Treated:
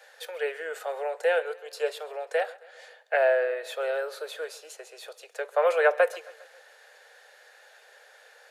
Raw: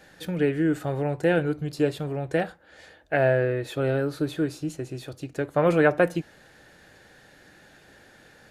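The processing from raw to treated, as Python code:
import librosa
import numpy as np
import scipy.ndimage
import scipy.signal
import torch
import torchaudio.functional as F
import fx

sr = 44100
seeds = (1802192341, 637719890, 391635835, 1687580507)

p1 = scipy.signal.sosfilt(scipy.signal.butter(12, 450.0, 'highpass', fs=sr, output='sos'), x)
y = p1 + fx.echo_feedback(p1, sr, ms=135, feedback_pct=57, wet_db=-21.5, dry=0)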